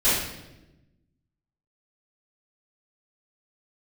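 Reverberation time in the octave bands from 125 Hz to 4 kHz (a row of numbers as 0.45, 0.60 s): 1.6, 1.5, 1.2, 0.85, 0.85, 0.80 s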